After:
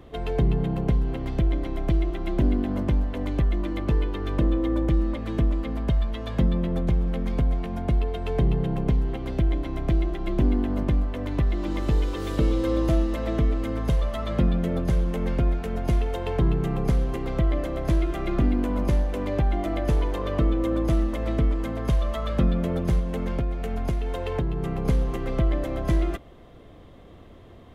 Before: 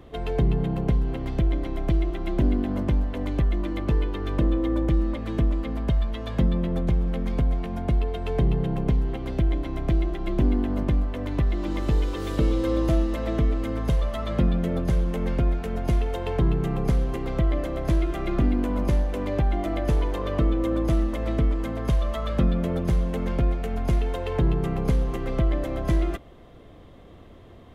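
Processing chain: 22.99–24.85 s: compression, threshold -22 dBFS, peak gain reduction 6 dB

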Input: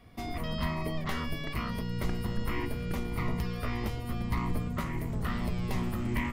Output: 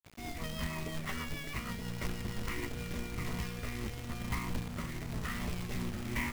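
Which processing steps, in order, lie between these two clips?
rotary cabinet horn 6.3 Hz, later 1 Hz, at 2.60 s; rippled Chebyshev low-pass 7.9 kHz, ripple 6 dB; companded quantiser 4-bit; trim +1 dB

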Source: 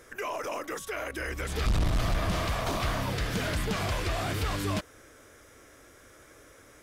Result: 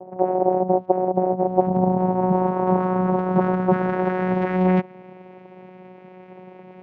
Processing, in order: small resonant body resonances 310/470/2500/3800 Hz, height 14 dB, ringing for 25 ms; vocoder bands 4, saw 184 Hz; low-pass sweep 710 Hz -> 2.3 kHz, 1.44–5.11 s; trim +3.5 dB

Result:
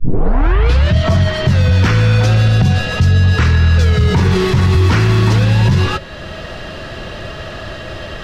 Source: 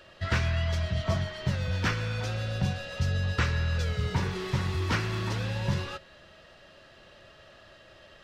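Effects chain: tape start-up on the opening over 0.94 s; bass shelf 470 Hz +6 dB; band-stop 560 Hz, Q 13; loudness maximiser +21.5 dB; three bands compressed up and down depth 40%; trim -3.5 dB

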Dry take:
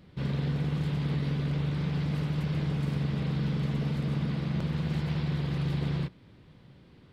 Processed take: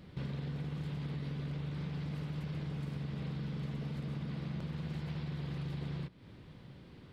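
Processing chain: compression 4:1, threshold -40 dBFS, peak gain reduction 12 dB; trim +1.5 dB

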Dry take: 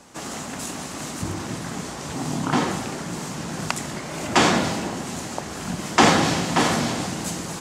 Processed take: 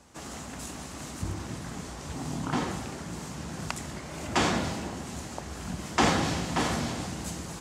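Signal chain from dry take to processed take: peaking EQ 64 Hz +14.5 dB 1 oct; trim -8.5 dB

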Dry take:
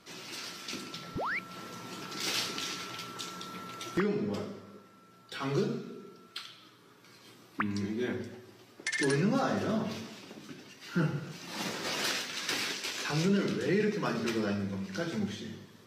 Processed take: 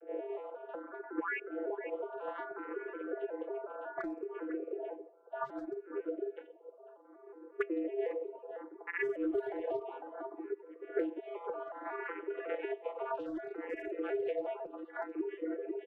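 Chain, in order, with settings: vocoder on a broken chord bare fifth, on F3, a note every 183 ms; level-controlled noise filter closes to 550 Hz, open at -26.5 dBFS; mistuned SSB +140 Hz 220–2800 Hz; 11.26–11.72 s: comb 4.9 ms, depth 72%; echo from a far wall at 86 m, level -13 dB; in parallel at -5.5 dB: hard clipper -31 dBFS, distortion -10 dB; on the sum: compression 8:1, threshold -45 dBFS, peak gain reduction 22.5 dB; reverb removal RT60 1.2 s; barber-pole phaser +0.64 Hz; trim +14.5 dB

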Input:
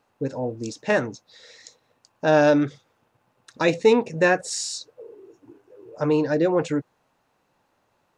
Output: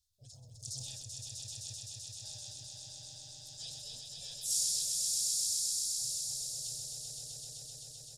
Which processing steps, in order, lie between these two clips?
harmony voices -3 st -10 dB, +4 st -7 dB, +5 st -2 dB; compression 5:1, threshold -19 dBFS, peak gain reduction 10.5 dB; inverse Chebyshev band-stop 170–2300 Hz, stop band 40 dB; echo with a slow build-up 129 ms, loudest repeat 5, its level -4 dB; decay stretcher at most 23 dB/s; trim -5 dB

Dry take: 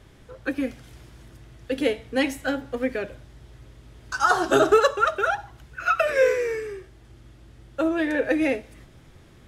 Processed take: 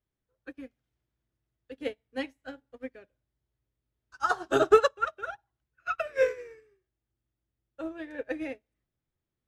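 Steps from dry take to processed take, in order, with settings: treble shelf 8.2 kHz -7.5 dB; upward expansion 2.5:1, over -37 dBFS

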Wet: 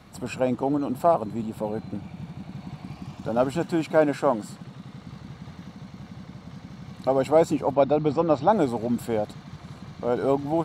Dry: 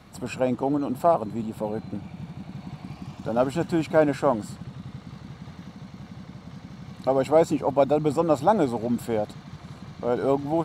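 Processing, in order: 3.59–4.98 s: peaking EQ 73 Hz -14 dB 0.97 oct; 7.75–8.53 s: low-pass 5.5 kHz 24 dB/octave

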